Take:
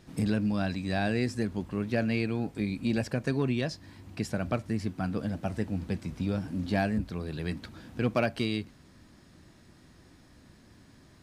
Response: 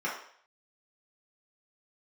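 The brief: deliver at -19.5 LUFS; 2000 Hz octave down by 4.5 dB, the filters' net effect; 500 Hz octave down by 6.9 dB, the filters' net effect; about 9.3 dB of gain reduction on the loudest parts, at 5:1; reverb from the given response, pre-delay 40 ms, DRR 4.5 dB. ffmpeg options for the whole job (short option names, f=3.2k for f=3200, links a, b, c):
-filter_complex "[0:a]equalizer=f=500:t=o:g=-9,equalizer=f=2k:t=o:g=-5.5,acompressor=threshold=-36dB:ratio=5,asplit=2[a][b];[1:a]atrim=start_sample=2205,adelay=40[c];[b][c]afir=irnorm=-1:irlink=0,volume=-13dB[d];[a][d]amix=inputs=2:normalize=0,volume=21dB"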